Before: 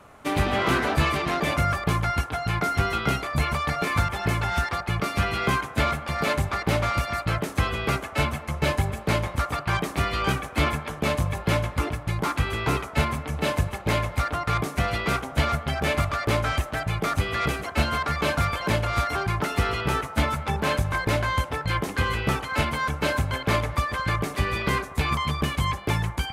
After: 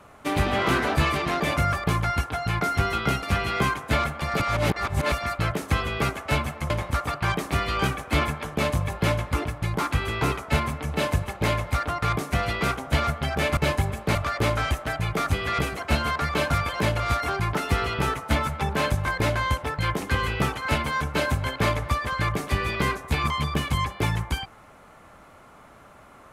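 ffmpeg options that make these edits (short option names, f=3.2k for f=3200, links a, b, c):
-filter_complex "[0:a]asplit=7[a][b][c][d][e][f][g];[a]atrim=end=3.232[h];[b]atrim=start=5.098:end=6.272[i];[c]atrim=start=6.268:end=6.992,asetpts=PTS-STARTPTS,areverse[j];[d]atrim=start=6.988:end=8.572[k];[e]atrim=start=9.148:end=16.022[l];[f]atrim=start=8.568:end=9.152[m];[g]atrim=start=16.018[n];[h][i]acrossfade=d=0.004:c1=hsin:c2=hsin[o];[o][j]acrossfade=d=0.004:c1=hsin:c2=hsin[p];[p][k]acrossfade=d=0.004:c1=hsin:c2=hsin[q];[q][l]acrossfade=d=0.004:c1=hsin:c2=hsin[r];[r][m]acrossfade=d=0.004:c1=hsin:c2=hsin[s];[s][n]acrossfade=d=0.004:c1=hsin:c2=hsin"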